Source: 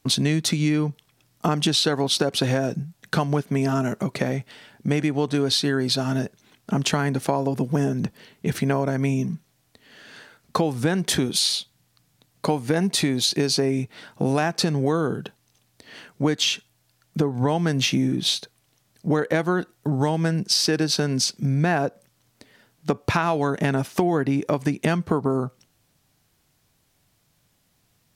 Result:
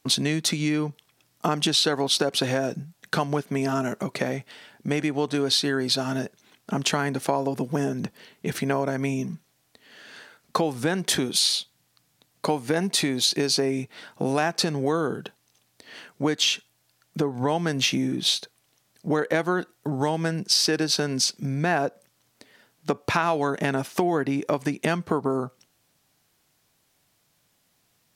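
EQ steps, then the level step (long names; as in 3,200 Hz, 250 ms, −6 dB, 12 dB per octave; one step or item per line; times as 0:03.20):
low-shelf EQ 160 Hz −11.5 dB
0.0 dB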